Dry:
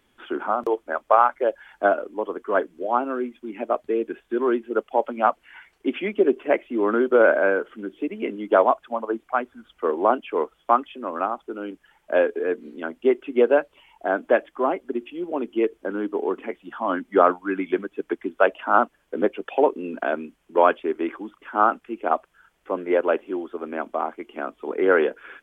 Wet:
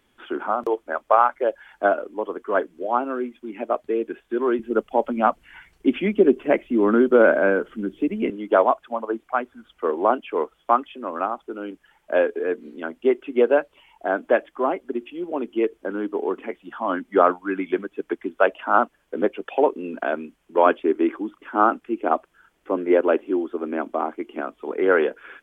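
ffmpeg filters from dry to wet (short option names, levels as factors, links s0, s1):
-filter_complex "[0:a]asettb=1/sr,asplit=3[s0][s1][s2];[s0]atrim=end=4.594[s3];[s1]atrim=start=4.59:end=8.3,asetpts=PTS-STARTPTS,afade=t=in:d=0.004:c=qsin,afade=t=out:st=3.706:d=0.004:c=qsin,bass=f=250:g=14,treble=f=4000:g=4[s4];[s2]atrim=start=8.296[s5];[s3][s4]acrossfade=d=0.004:c1=hsin:c2=qsin[s6];[s6][s5]acrossfade=d=0.004:c1=qsin:c2=hsin,asettb=1/sr,asplit=3[s7][s8][s9];[s7]atrim=end=20.664[s10];[s8]atrim=start=20.66:end=24.41,asetpts=PTS-STARTPTS,afade=t=in:d=0.004:c=qsin,afade=t=out:st=3.746:d=0.004:c=qsin,equalizer=f=300:w=1.5:g=7[s11];[s9]atrim=start=24.406[s12];[s10][s11]acrossfade=d=0.004:c1=hsin:c2=qsin[s13];[s13][s12]acrossfade=d=0.004:c1=qsin:c2=hsin"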